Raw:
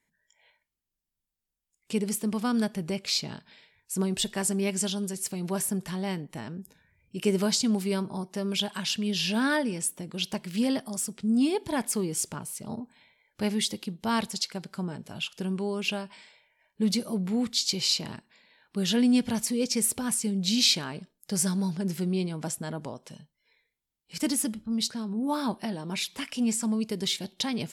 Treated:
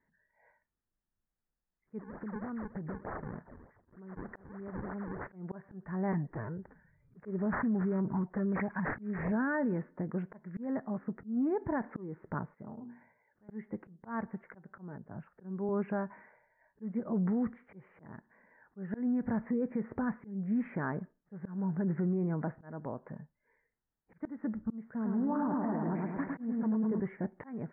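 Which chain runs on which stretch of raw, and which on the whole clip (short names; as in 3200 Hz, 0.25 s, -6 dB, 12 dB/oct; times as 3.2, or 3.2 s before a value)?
1.99–5.27 decimation with a swept rate 39×, swing 160% 3.3 Hz + compressor 20:1, threshold -37 dBFS
6.12–9.32 low shelf 180 Hz +6 dB + envelope flanger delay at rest 7.8 ms, full sweep at -23.5 dBFS + careless resampling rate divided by 8×, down none, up filtered
12.54–13.49 HPF 81 Hz + notches 60/120/180/240/300/360/420/480/540 Hz + compressor 12:1, threshold -43 dBFS
14.98–15.69 air absorption 430 m + three-band expander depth 40%
24.84–27 switching spikes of -30.5 dBFS + LPF 1200 Hz 6 dB/oct + feedback echo 0.106 s, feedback 60%, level -3.5 dB
whole clip: steep low-pass 1900 Hz 72 dB/oct; auto swell 0.423 s; limiter -27 dBFS; gain +2 dB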